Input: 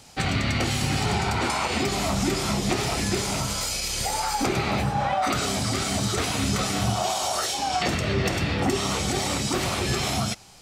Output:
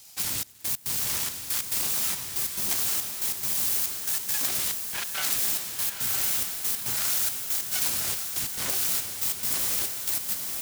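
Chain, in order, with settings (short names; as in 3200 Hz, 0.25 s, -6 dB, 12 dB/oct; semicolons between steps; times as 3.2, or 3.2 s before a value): self-modulated delay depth 0.87 ms; pre-emphasis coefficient 0.9; in parallel at -3 dB: wavefolder -30 dBFS; on the sum: step gate "xxxx..x." 140 bpm -24 dB; diffused feedback echo 1.019 s, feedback 46%, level -4.5 dB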